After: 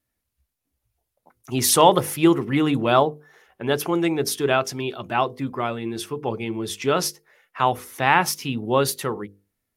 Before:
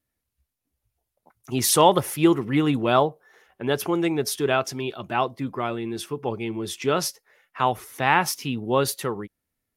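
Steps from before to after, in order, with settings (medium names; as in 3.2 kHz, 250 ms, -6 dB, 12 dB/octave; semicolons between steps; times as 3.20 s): hum notches 50/100/150/200/250/300/350/400/450/500 Hz; trim +2 dB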